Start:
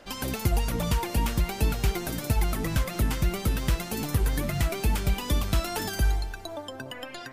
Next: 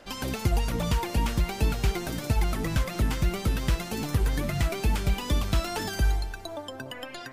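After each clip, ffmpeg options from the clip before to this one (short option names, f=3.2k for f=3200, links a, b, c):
-filter_complex "[0:a]acrossover=split=7900[a][b];[b]acompressor=threshold=-43dB:ratio=4:attack=1:release=60[c];[a][c]amix=inputs=2:normalize=0"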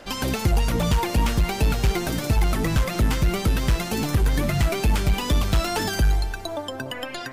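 -af "asoftclip=type=tanh:threshold=-19.5dB,volume=7dB"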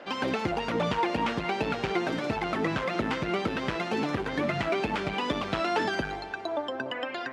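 -af "highpass=260,lowpass=2.8k"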